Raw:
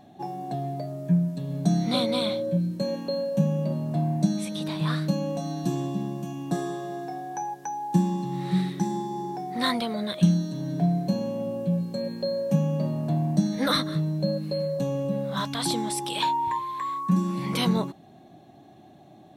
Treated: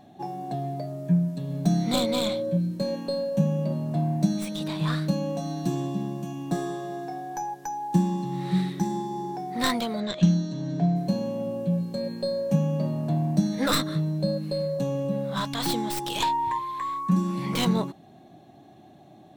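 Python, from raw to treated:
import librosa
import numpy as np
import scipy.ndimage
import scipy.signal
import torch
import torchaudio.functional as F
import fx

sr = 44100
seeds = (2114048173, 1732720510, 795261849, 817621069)

y = fx.tracing_dist(x, sr, depth_ms=0.11)
y = fx.steep_lowpass(y, sr, hz=7600.0, slope=72, at=(10.0, 10.96))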